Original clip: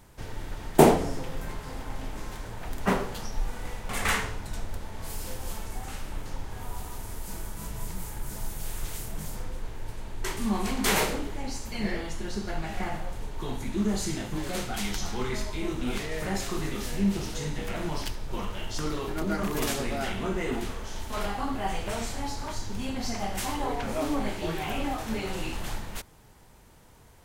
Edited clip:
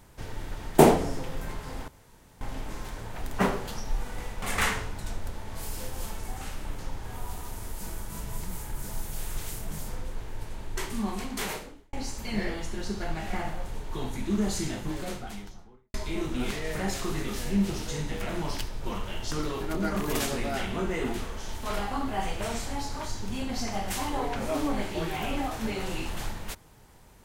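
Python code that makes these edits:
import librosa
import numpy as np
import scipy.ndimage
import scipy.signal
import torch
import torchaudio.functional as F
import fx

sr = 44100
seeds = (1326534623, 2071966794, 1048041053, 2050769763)

y = fx.studio_fade_out(x, sr, start_s=14.13, length_s=1.28)
y = fx.edit(y, sr, fx.insert_room_tone(at_s=1.88, length_s=0.53),
    fx.fade_out_span(start_s=10.12, length_s=1.28), tone=tone)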